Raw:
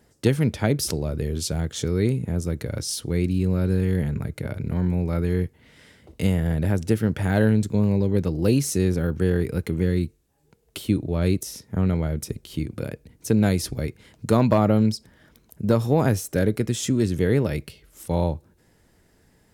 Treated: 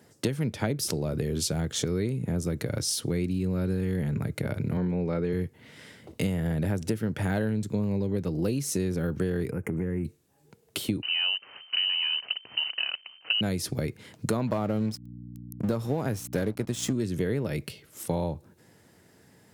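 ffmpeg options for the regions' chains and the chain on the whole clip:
-filter_complex "[0:a]asettb=1/sr,asplit=3[a][b][c];[a]atrim=end=4.774[d];[b]atrim=start=4.77:end=5.33,asetpts=PTS-STARTPTS,afade=t=in:d=0.004:c=qsin,afade=t=out:st=0.556:d=0.004:c=qsin,highpass=110,lowpass=5.1k,equalizer=f=470:t=o:w=0.42:g=6[e];[c]atrim=start=5.326[f];[d][e]acrossfade=d=0.004:c1=hsin:c2=qsin[g];[g][f]acrossfade=d=0.004:c1=qsin:c2=hsin,asettb=1/sr,asplit=3[h][i][j];[h]atrim=end=9.514[k];[i]atrim=start=9.51:end=10.05,asetpts=PTS-STARTPTS,afade=t=in:d=0.004:c=qsin,afade=t=out:st=0.536:d=0.004:c=qsin,highshelf=f=6.4k:g=-8,acompressor=threshold=-28dB:ratio=3:attack=3.2:release=140:knee=1:detection=peak,asuperstop=centerf=4000:order=4:qfactor=0.94[l];[j]atrim=start=10.046[m];[k][l]acrossfade=d=0.004:c1=hsin:c2=qsin[n];[n][m]acrossfade=d=0.004:c1=qsin:c2=hsin,asettb=1/sr,asplit=3[o][p][q];[o]atrim=end=11.024[r];[p]atrim=start=11.02:end=13.41,asetpts=PTS-STARTPTS,afade=t=in:d=0.004:c=qsin,afade=t=out:st=2.386:d=0.004:c=qsin,acrusher=bits=7:dc=4:mix=0:aa=0.000001,lowpass=f=2.6k:t=q:w=0.5098,lowpass=f=2.6k:t=q:w=0.6013,lowpass=f=2.6k:t=q:w=0.9,lowpass=f=2.6k:t=q:w=2.563,afreqshift=-3100[s];[q]atrim=start=13.406[t];[r][s]acrossfade=d=0.004:c1=hsin:c2=qsin[u];[u][t]acrossfade=d=0.004:c1=qsin:c2=hsin,asettb=1/sr,asplit=3[v][w][x];[v]atrim=end=14.474[y];[w]atrim=start=14.47:end=16.93,asetpts=PTS-STARTPTS,afade=t=in:d=0.004:c=qsin,afade=t=out:st=2.456:d=0.004:c=qsin,aeval=exprs='sgn(val(0))*max(abs(val(0))-0.0133,0)':c=same,aeval=exprs='val(0)+0.0112*(sin(2*PI*60*n/s)+sin(2*PI*2*60*n/s)/2+sin(2*PI*3*60*n/s)/3+sin(2*PI*4*60*n/s)/4+sin(2*PI*5*60*n/s)/5)':c=same[z];[x]atrim=start=16.926[aa];[y][z]acrossfade=d=0.004:c1=hsin:c2=qsin[ab];[ab][aa]acrossfade=d=0.004:c1=qsin:c2=hsin,highpass=f=95:w=0.5412,highpass=f=95:w=1.3066,acompressor=threshold=-28dB:ratio=6,volume=3dB"

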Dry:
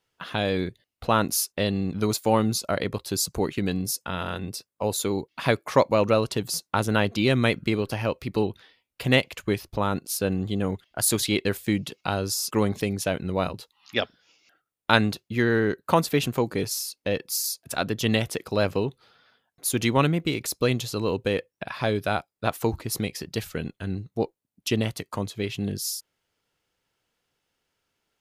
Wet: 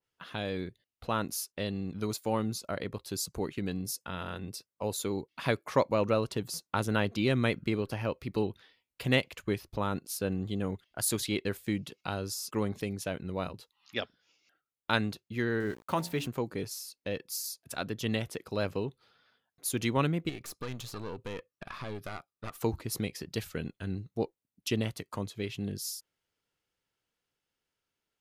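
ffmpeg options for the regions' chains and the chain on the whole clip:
-filter_complex "[0:a]asettb=1/sr,asplit=3[a][b][c];[a]atrim=end=15.604[d];[b]atrim=start=15.6:end=16.27,asetpts=PTS-STARTPTS,afade=t=in:d=0.004:c=qsin,afade=t=out:st=0.666:d=0.004:c=qsin,bandreject=f=480:w=8.6,bandreject=f=57.37:t=h:w=4,bandreject=f=114.74:t=h:w=4,bandreject=f=172.11:t=h:w=4,bandreject=f=229.48:t=h:w=4,bandreject=f=286.85:t=h:w=4,bandreject=f=344.22:t=h:w=4,bandreject=f=401.59:t=h:w=4,bandreject=f=458.96:t=h:w=4,bandreject=f=516.33:t=h:w=4,bandreject=f=573.7:t=h:w=4,bandreject=f=631.07:t=h:w=4,bandreject=f=688.44:t=h:w=4,bandreject=f=745.81:t=h:w=4,bandreject=f=803.18:t=h:w=4,bandreject=f=860.55:t=h:w=4,bandreject=f=917.92:t=h:w=4,bandreject=f=975.29:t=h:w=4,aeval=exprs='val(0)*gte(abs(val(0)),0.0126)':c=same[e];[c]atrim=start=16.266[f];[d][e]acrossfade=d=0.004:c1=hsin:c2=qsin[g];[g][f]acrossfade=d=0.004:c1=qsin:c2=hsin,asettb=1/sr,asplit=3[h][i][j];[h]atrim=end=20.294[k];[i]atrim=start=20.29:end=22.61,asetpts=PTS-STARTPTS,afade=t=in:d=0.004:c=qsin,afade=t=out:st=2.316:d=0.004:c=qsin,equalizer=f=1.2k:w=7.7:g=13,acompressor=threshold=-27dB:ratio=2:attack=3.2:release=140:knee=1:detection=peak,aeval=exprs='(tanh(20*val(0)+0.65)-tanh(0.65))/20':c=same[l];[j]atrim=start=22.606[m];[k][l]acrossfade=d=0.004:c1=hsin:c2=qsin[n];[n][m]acrossfade=d=0.004:c1=qsin:c2=hsin,equalizer=f=730:t=o:w=0.77:g=-2,dynaudnorm=f=970:g=9:m=5dB,adynamicequalizer=threshold=0.0126:dfrequency=2200:dqfactor=0.7:tfrequency=2200:tqfactor=0.7:attack=5:release=100:ratio=0.375:range=2:mode=cutabove:tftype=highshelf,volume=-9dB"

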